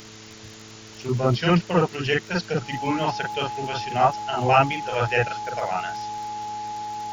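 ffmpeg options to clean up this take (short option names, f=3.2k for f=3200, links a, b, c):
-af "adeclick=t=4,bandreject=f=109:t=h:w=4,bandreject=f=218:t=h:w=4,bandreject=f=327:t=h:w=4,bandreject=f=436:t=h:w=4,bandreject=f=840:w=30,afftdn=nr=25:nf=-43"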